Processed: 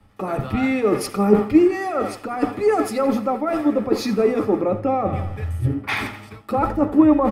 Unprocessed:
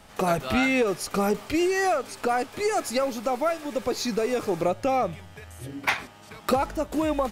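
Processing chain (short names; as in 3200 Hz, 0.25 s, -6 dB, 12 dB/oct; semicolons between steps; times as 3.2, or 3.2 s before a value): bell 100 Hz +9 dB 0.52 oct; in parallel at -2 dB: limiter -21 dBFS, peak gain reduction 10.5 dB; on the sum: feedback echo 86 ms, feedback 59%, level -14.5 dB; reverse; compressor 6:1, threshold -29 dBFS, peak gain reduction 13.5 dB; reverse; reverb RT60 0.15 s, pre-delay 3 ms, DRR 7.5 dB; three-band expander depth 100%; gain -1 dB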